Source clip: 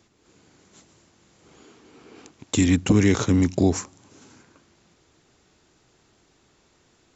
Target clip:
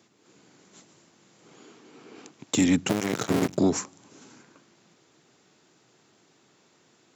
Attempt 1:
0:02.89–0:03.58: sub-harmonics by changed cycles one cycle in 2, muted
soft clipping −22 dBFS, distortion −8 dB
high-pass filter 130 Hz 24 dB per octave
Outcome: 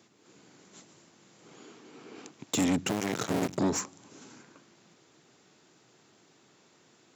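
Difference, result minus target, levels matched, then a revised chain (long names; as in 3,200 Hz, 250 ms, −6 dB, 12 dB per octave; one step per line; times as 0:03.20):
soft clipping: distortion +11 dB
0:02.89–0:03.58: sub-harmonics by changed cycles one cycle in 2, muted
soft clipping −11.5 dBFS, distortion −19 dB
high-pass filter 130 Hz 24 dB per octave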